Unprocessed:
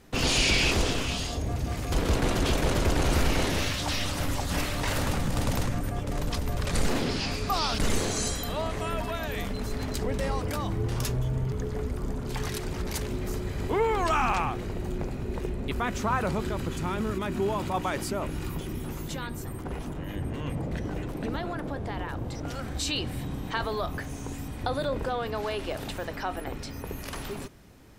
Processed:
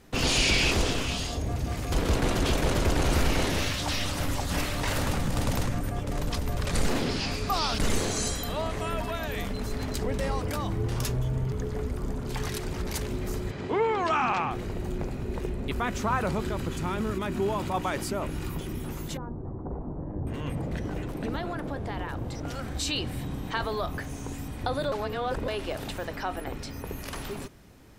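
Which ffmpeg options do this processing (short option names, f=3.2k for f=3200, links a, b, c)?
-filter_complex "[0:a]asettb=1/sr,asplit=3[a][b][c];[a]atrim=end=13.514[d];[b]atrim=start=13.51:end=14.51,asetpts=PTS-STARTPTS,afade=t=in:d=0.004:c=qsin,afade=t=out:st=0.996:d=0.004:c=qsin,highpass=130,lowpass=4.9k[e];[c]atrim=start=14.506[f];[d][e]acrossfade=d=0.004:c1=hsin:c2=qsin[g];[g][f]acrossfade=d=0.004:c1=qsin:c2=hsin,asettb=1/sr,asplit=3[h][i][j];[h]atrim=end=19.174[k];[i]atrim=start=19.17:end=20.27,asetpts=PTS-STARTPTS,afade=t=in:d=0.004:c=qsin,afade=t=out:st=1.096:d=0.004:c=qsin,lowpass=f=1k:w=0.5412,lowpass=f=1k:w=1.3066[l];[j]atrim=start=20.266[m];[k][l]acrossfade=d=0.004:c1=hsin:c2=qsin[n];[n][m]acrossfade=d=0.004:c1=qsin:c2=hsin,asplit=3[o][p][q];[o]atrim=end=24.922[r];[p]atrim=start=24.918:end=25.482,asetpts=PTS-STARTPTS,areverse[s];[q]atrim=start=25.478[t];[r][s]acrossfade=d=0.004:c1=hsin:c2=hsin[u];[u][t]acrossfade=d=0.004:c1=hsin:c2=hsin"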